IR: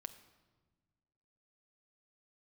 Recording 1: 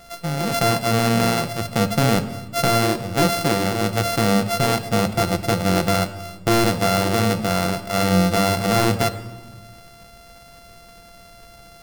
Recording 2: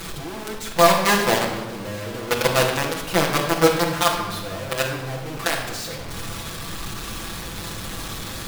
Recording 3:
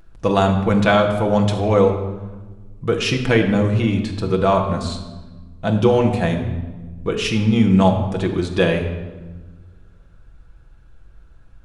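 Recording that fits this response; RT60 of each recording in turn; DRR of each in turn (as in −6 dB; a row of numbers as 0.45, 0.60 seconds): 1; 1.4, 1.3, 1.3 seconds; 8.5, −3.0, 2.0 decibels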